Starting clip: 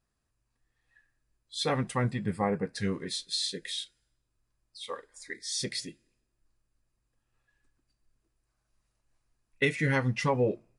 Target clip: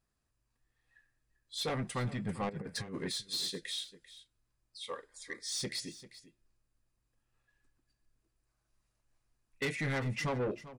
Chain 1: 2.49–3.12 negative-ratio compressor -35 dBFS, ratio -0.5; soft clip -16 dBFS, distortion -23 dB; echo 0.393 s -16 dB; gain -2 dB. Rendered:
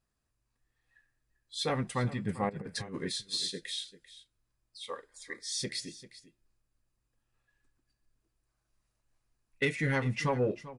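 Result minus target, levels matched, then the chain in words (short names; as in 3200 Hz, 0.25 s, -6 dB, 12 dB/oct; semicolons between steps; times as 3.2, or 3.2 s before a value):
soft clip: distortion -14 dB
2.49–3.12 negative-ratio compressor -35 dBFS, ratio -0.5; soft clip -27.5 dBFS, distortion -9 dB; echo 0.393 s -16 dB; gain -2 dB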